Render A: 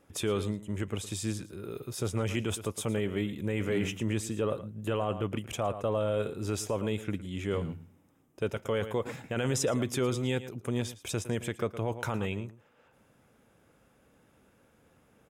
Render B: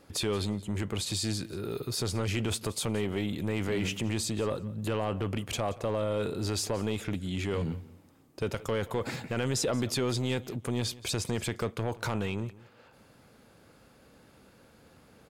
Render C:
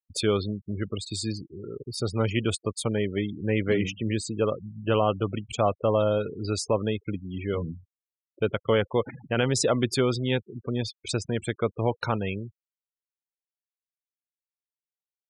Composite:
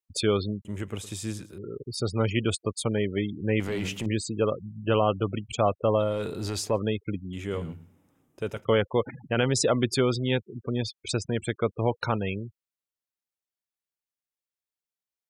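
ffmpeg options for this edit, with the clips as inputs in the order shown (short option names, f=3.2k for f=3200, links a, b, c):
-filter_complex "[0:a]asplit=2[a][b];[1:a]asplit=2[c][d];[2:a]asplit=5[e][f][g][h][i];[e]atrim=end=0.652[j];[a]atrim=start=0.648:end=1.582[k];[f]atrim=start=1.578:end=3.602[l];[c]atrim=start=3.598:end=4.062[m];[g]atrim=start=4.058:end=6.18[n];[d]atrim=start=5.94:end=6.8[o];[h]atrim=start=6.56:end=7.332[p];[b]atrim=start=7.328:end=8.652[q];[i]atrim=start=8.648[r];[j][k]acrossfade=d=0.004:c1=hsin:c2=hsin[s];[s][l]acrossfade=d=0.004:c1=hsin:c2=hsin[t];[t][m]acrossfade=d=0.004:c1=hsin:c2=hsin[u];[u][n]acrossfade=d=0.004:c1=hsin:c2=hsin[v];[v][o]acrossfade=d=0.24:c1=tri:c2=tri[w];[w][p]acrossfade=d=0.24:c1=tri:c2=tri[x];[x][q]acrossfade=d=0.004:c1=hsin:c2=hsin[y];[y][r]acrossfade=d=0.004:c1=hsin:c2=hsin"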